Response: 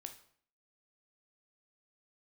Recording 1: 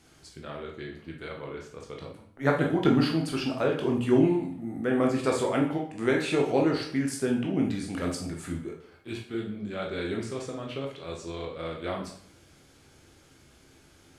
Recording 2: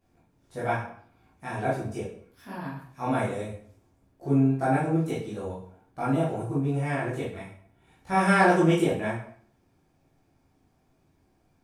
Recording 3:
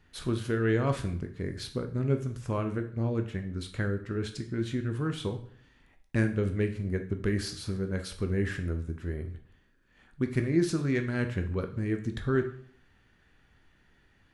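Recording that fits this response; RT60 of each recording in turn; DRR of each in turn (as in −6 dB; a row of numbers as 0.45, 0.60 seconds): 3; 0.55, 0.55, 0.55 seconds; −0.5, −10.0, 6.0 decibels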